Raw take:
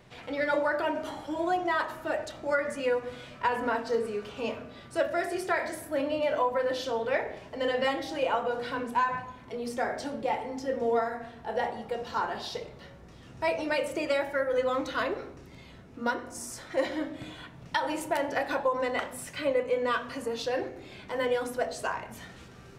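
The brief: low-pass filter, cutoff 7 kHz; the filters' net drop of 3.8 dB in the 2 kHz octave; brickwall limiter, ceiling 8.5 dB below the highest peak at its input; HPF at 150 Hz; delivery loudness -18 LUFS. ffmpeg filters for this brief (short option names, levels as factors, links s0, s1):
-af "highpass=150,lowpass=7000,equalizer=f=2000:t=o:g=-5,volume=6.31,alimiter=limit=0.422:level=0:latency=1"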